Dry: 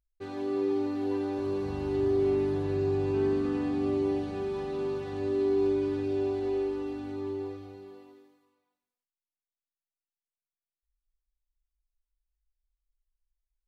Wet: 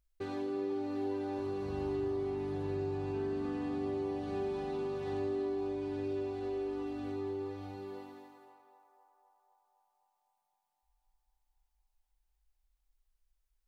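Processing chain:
downward compressor 2.5 to 1, threshold −44 dBFS, peak gain reduction 13.5 dB
on a send: feedback echo with a band-pass in the loop 255 ms, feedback 75%, band-pass 860 Hz, level −7 dB
on the sum: level +5 dB

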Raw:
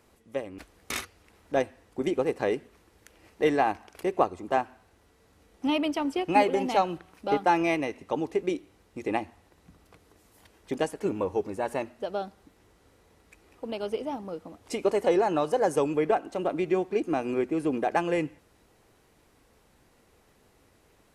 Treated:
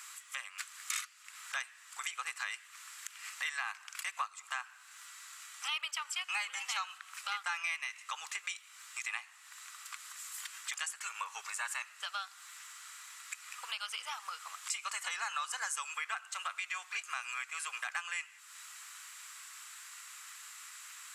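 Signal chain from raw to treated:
elliptic high-pass filter 1,200 Hz, stop band 80 dB
parametric band 7,500 Hz +11.5 dB 0.37 octaves
downward compressor 3 to 1, threshold −56 dBFS, peak gain reduction 21 dB
in parallel at −1 dB: brickwall limiter −42.5 dBFS, peak gain reduction 10 dB
on the sum: level +11 dB

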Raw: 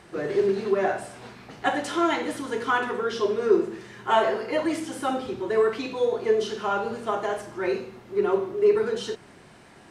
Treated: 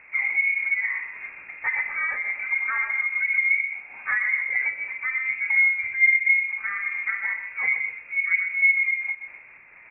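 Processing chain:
running median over 15 samples
parametric band 500 Hz +14 dB 0.5 octaves
in parallel at +2 dB: downward compressor 12 to 1, threshold −28 dBFS, peak gain reduction 22.5 dB
on the sum: bit-depth reduction 8 bits, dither none
treble cut that deepens with the level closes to 620 Hz, closed at −10.5 dBFS
on a send: repeating echo 125 ms, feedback 26%, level −8.5 dB
on the sum: voice inversion scrambler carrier 2,600 Hz
amplitude modulation by smooth noise, depth 60%
level −5.5 dB

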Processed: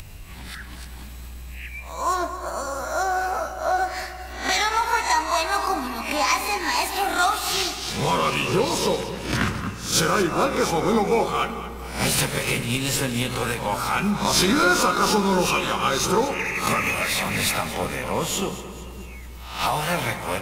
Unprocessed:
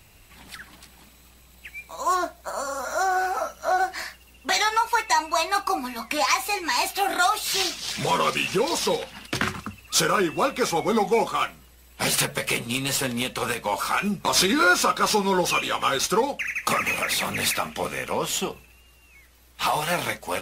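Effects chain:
peak hold with a rise ahead of every peak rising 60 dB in 0.41 s
low-shelf EQ 170 Hz +11.5 dB
upward compression, threshold −30 dBFS
echo with a time of its own for lows and highs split 330 Hz, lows 566 ms, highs 225 ms, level −14.5 dB
on a send at −10 dB: convolution reverb RT60 2.5 s, pre-delay 21 ms
on the sum: level −2 dB

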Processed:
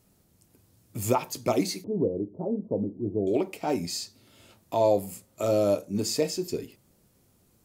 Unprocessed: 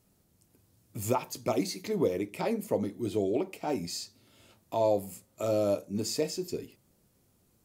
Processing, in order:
0:01.84–0:03.27: Gaussian smoothing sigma 14 samples
level +4 dB

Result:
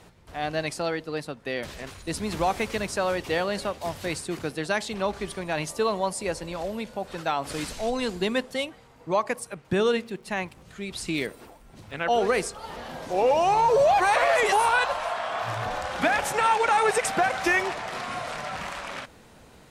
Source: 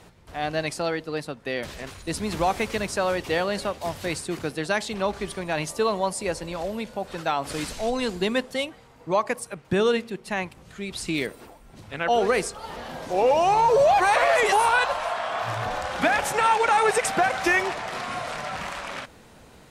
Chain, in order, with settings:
0:09.99–0:12.13: surface crackle 68 per second −48 dBFS
level −1.5 dB

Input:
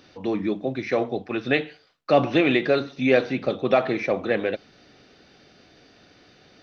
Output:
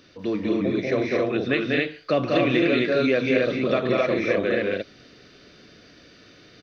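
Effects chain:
parametric band 810 Hz −15 dB 0.28 octaves
loudspeakers that aren't time-aligned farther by 66 metres −4 dB, 77 metres −4 dB, 91 metres −1 dB
downward compressor 2.5 to 1, threshold −18 dBFS, peak gain reduction 5 dB

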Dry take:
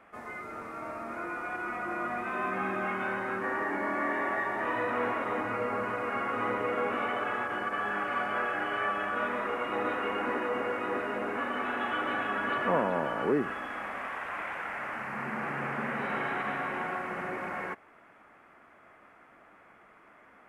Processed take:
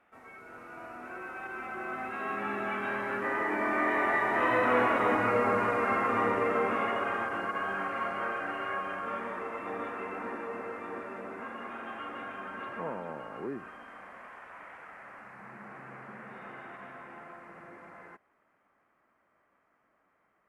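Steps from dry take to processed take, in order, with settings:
source passing by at 0:05.12, 21 m/s, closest 27 metres
automatic gain control gain up to 3 dB
level +2.5 dB

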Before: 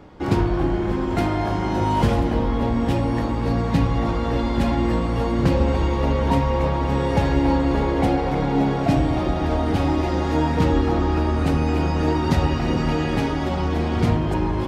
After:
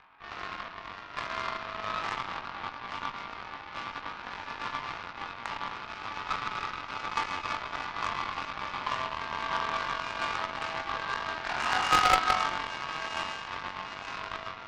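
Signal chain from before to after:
0:11.43–0:12.15: three sine waves on the formant tracks
upward compression, threshold −26 dBFS
frequency shifter +13 Hz
flutter between parallel walls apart 3.7 metres, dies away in 0.51 s
comb and all-pass reverb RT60 1 s, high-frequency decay 0.55×, pre-delay 85 ms, DRR 4.5 dB
single-sideband voice off tune +330 Hz 570–2,600 Hz
harmonic generator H 2 −7 dB, 3 −16 dB, 4 −13 dB, 7 −25 dB, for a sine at −10.5 dBFS
level −3.5 dB

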